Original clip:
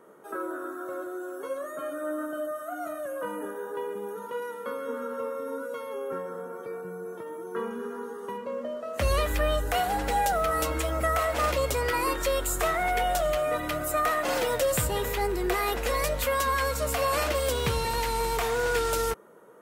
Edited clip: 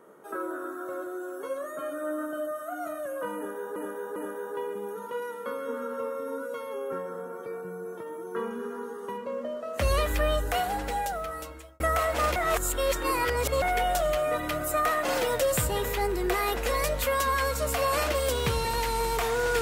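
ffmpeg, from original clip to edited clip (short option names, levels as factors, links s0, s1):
-filter_complex "[0:a]asplit=6[s0][s1][s2][s3][s4][s5];[s0]atrim=end=3.762[s6];[s1]atrim=start=3.358:end=3.762[s7];[s2]atrim=start=3.358:end=11,asetpts=PTS-STARTPTS,afade=t=out:st=6.232:d=1.41[s8];[s3]atrim=start=11:end=11.562,asetpts=PTS-STARTPTS,afade=t=in:d=0.004:c=hsin[s9];[s4]atrim=start=11.558:end=12.822,asetpts=PTS-STARTPTS,areverse[s10];[s5]atrim=start=12.818[s11];[s6][s7]acrossfade=d=0.004:c1=hsin:c2=hsin[s12];[s8][s9]concat=n=2:v=0:a=1[s13];[s12][s13]acrossfade=d=0.004:c1=hsin:c2=hsin[s14];[s14][s10]acrossfade=d=0.004:c1=hsin:c2=hsin[s15];[s15][s11]acrossfade=d=0.004:c1=hsin:c2=hsin"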